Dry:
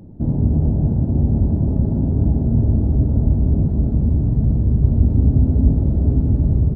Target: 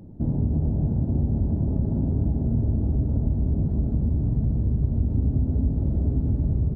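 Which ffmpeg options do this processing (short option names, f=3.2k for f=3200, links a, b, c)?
-af "acompressor=threshold=-16dB:ratio=3,volume=-3.5dB"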